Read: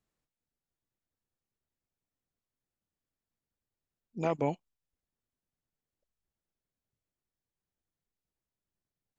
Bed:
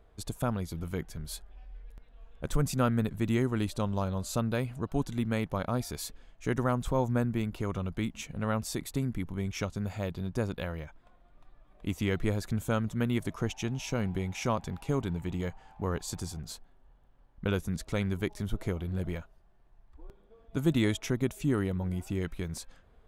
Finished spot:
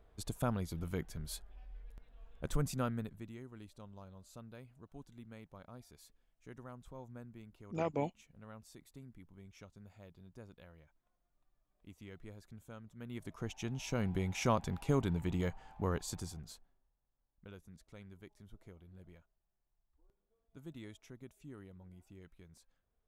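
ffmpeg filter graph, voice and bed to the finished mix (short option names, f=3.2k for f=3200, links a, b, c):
-filter_complex "[0:a]adelay=3550,volume=-5dB[a];[1:a]volume=16.5dB,afade=t=out:st=2.34:d=0.98:silence=0.125893,afade=t=in:st=12.96:d=1.46:silence=0.0944061,afade=t=out:st=15.68:d=1.22:silence=0.0841395[b];[a][b]amix=inputs=2:normalize=0"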